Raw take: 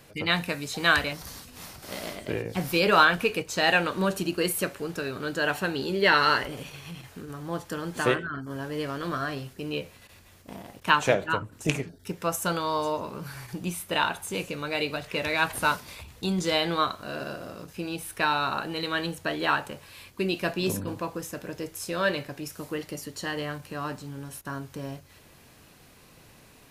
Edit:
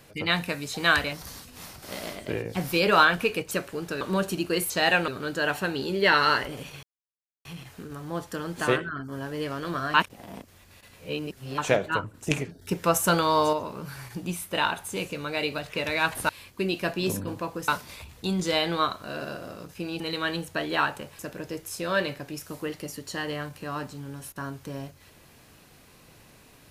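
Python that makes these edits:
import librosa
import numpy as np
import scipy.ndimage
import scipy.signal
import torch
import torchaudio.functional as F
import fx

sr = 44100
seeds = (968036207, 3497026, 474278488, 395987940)

y = fx.edit(x, sr, fx.swap(start_s=3.51, length_s=0.38, other_s=4.58, other_length_s=0.5),
    fx.insert_silence(at_s=6.83, length_s=0.62),
    fx.reverse_span(start_s=9.32, length_s=1.64),
    fx.clip_gain(start_s=11.97, length_s=0.94, db=5.5),
    fx.cut(start_s=17.99, length_s=0.71),
    fx.move(start_s=19.89, length_s=1.39, to_s=15.67), tone=tone)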